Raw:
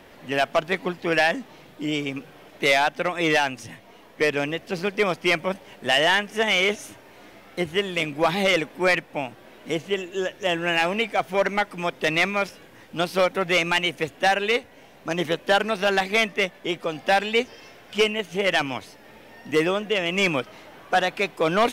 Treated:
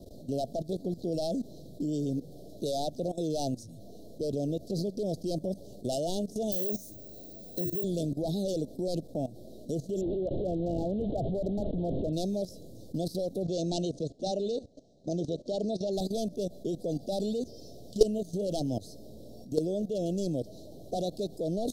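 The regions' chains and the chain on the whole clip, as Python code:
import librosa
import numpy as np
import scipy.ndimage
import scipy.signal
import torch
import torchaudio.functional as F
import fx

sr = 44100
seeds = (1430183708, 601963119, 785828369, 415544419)

y = fx.chain(x, sr, fx.hum_notches(base_hz=50, count=7),
    fx.resample_bad(factor=2, down='none', up='zero_stuff'),
    fx.band_squash(depth_pct=40), at=(6.52, 7.84))
y = fx.chain(y, sr, fx.delta_mod(bps=16000, step_db=-25.5),
    fx.peak_eq(hz=2500.0, db=-8.5, octaves=0.23),
    fx.clip_hard(threshold_db=-16.0), at=(10.01, 12.13))
y = fx.chain(y, sr, fx.lowpass(hz=7100.0, slope=24),
    fx.low_shelf(hz=72.0, db=-10.0), at=(13.43, 15.93))
y = scipy.signal.sosfilt(scipy.signal.cheby1(4, 1.0, [660.0, 4000.0], 'bandstop', fs=sr, output='sos'), y)
y = fx.low_shelf(y, sr, hz=170.0, db=12.0)
y = fx.level_steps(y, sr, step_db=16)
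y = y * librosa.db_to_amplitude(1.5)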